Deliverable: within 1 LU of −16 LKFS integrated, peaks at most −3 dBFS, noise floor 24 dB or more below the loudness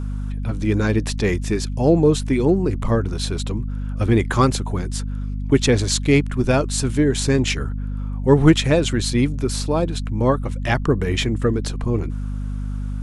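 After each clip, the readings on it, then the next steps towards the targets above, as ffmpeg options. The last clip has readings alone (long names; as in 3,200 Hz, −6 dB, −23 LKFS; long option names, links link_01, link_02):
mains hum 50 Hz; hum harmonics up to 250 Hz; level of the hum −23 dBFS; integrated loudness −20.5 LKFS; sample peak −1.0 dBFS; target loudness −16.0 LKFS
→ -af "bandreject=frequency=50:width_type=h:width=4,bandreject=frequency=100:width_type=h:width=4,bandreject=frequency=150:width_type=h:width=4,bandreject=frequency=200:width_type=h:width=4,bandreject=frequency=250:width_type=h:width=4"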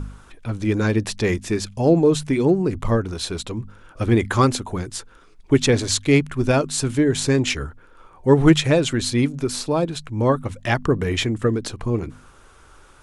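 mains hum none found; integrated loudness −20.5 LKFS; sample peak −2.5 dBFS; target loudness −16.0 LKFS
→ -af "volume=4.5dB,alimiter=limit=-3dB:level=0:latency=1"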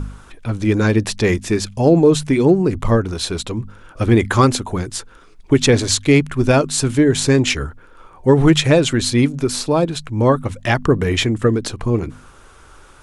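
integrated loudness −16.5 LKFS; sample peak −3.0 dBFS; background noise floor −45 dBFS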